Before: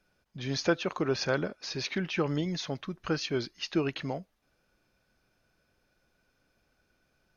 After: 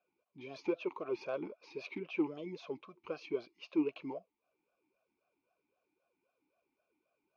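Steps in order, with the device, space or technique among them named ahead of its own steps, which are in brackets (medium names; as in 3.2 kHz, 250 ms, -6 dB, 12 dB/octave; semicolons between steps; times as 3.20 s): talk box (valve stage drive 21 dB, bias 0.25; talking filter a-u 3.8 Hz); trim +3.5 dB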